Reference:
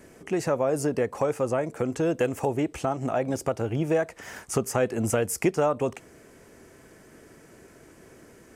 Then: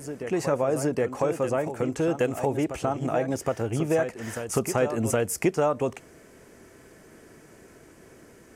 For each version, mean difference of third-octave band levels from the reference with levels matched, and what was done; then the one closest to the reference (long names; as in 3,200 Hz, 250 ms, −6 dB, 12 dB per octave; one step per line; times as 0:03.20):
2.0 dB: backwards echo 768 ms −9.5 dB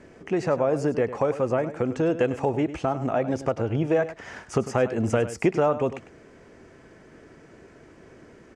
3.5 dB: high-frequency loss of the air 120 metres
single-tap delay 101 ms −13.5 dB
level +2 dB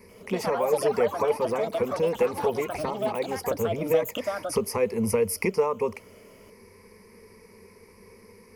5.5 dB: EQ curve with evenly spaced ripples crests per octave 0.87, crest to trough 18 dB
delay with pitch and tempo change per echo 90 ms, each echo +5 semitones, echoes 3, each echo −6 dB
level −4 dB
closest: first